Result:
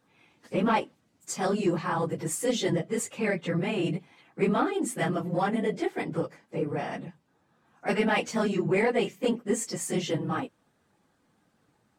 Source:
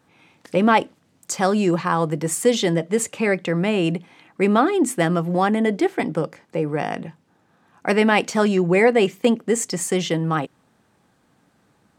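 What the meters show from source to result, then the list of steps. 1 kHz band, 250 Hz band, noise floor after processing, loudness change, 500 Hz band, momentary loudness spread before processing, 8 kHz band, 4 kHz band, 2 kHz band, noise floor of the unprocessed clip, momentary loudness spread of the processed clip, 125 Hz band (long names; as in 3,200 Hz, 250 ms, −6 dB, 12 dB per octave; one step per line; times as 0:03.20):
−8.5 dB, −8.5 dB, −70 dBFS, −8.0 dB, −8.5 dB, 10 LU, −7.5 dB, −8.0 dB, −8.5 dB, −63 dBFS, 10 LU, −7.0 dB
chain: random phases in long frames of 50 ms
soft clipping −6 dBFS, distortion −24 dB
level −7.5 dB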